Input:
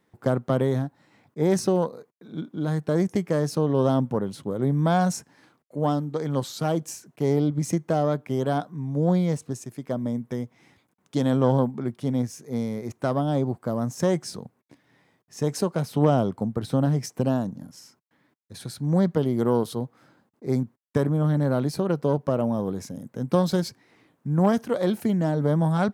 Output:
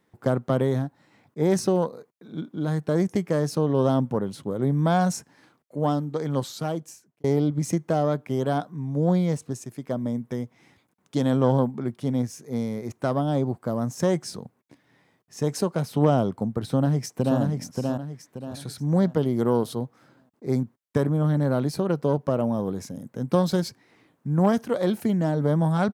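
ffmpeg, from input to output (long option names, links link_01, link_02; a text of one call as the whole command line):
ffmpeg -i in.wav -filter_complex "[0:a]asplit=2[link_01][link_02];[link_02]afade=type=in:start_time=16.66:duration=0.01,afade=type=out:start_time=17.39:duration=0.01,aecho=0:1:580|1160|1740|2320|2900:0.668344|0.23392|0.0818721|0.0286552|0.0100293[link_03];[link_01][link_03]amix=inputs=2:normalize=0,asplit=2[link_04][link_05];[link_04]atrim=end=7.24,asetpts=PTS-STARTPTS,afade=type=out:start_time=6.41:duration=0.83[link_06];[link_05]atrim=start=7.24,asetpts=PTS-STARTPTS,afade=type=in:duration=0.004:curve=hsin[link_07];[link_06][link_07]concat=n=2:v=0:a=1" out.wav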